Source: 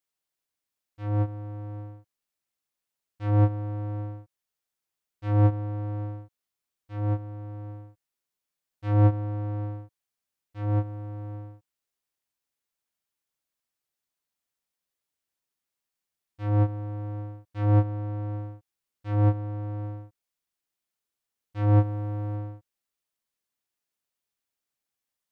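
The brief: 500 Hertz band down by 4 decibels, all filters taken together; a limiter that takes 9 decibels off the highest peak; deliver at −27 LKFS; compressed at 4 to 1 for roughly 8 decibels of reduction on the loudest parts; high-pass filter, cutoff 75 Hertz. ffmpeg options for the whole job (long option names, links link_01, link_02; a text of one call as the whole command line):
ffmpeg -i in.wav -af "highpass=75,equalizer=frequency=500:width_type=o:gain=-4.5,acompressor=threshold=-25dB:ratio=4,volume=11.5dB,alimiter=limit=-17dB:level=0:latency=1" out.wav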